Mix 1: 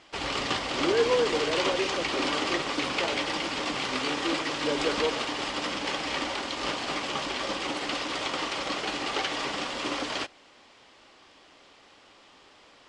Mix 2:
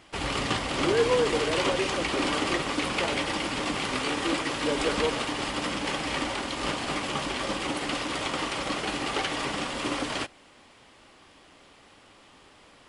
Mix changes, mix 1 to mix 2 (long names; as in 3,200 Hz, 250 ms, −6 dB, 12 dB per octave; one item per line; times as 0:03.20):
background: add bass and treble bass +8 dB, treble −12 dB
master: remove high-frequency loss of the air 150 metres